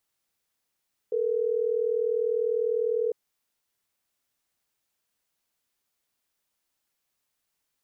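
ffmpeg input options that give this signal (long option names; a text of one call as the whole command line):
ffmpeg -f lavfi -i "aevalsrc='0.0501*(sin(2*PI*440*t)+sin(2*PI*480*t))*clip(min(mod(t,6),2-mod(t,6))/0.005,0,1)':duration=3.12:sample_rate=44100" out.wav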